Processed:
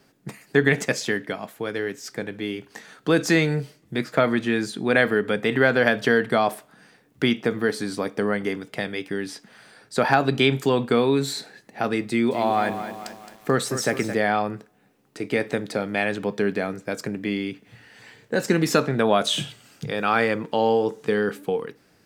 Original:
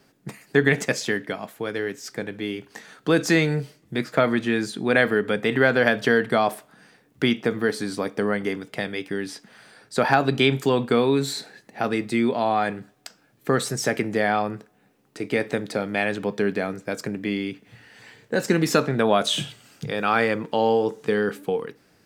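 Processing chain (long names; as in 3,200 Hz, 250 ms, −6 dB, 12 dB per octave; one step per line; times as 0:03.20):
0:12.05–0:14.15: feedback echo at a low word length 218 ms, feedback 55%, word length 7 bits, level −10 dB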